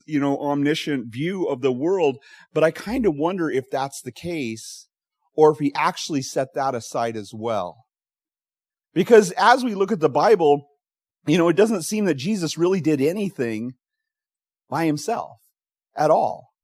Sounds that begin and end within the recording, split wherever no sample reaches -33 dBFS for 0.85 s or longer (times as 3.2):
8.96–13.71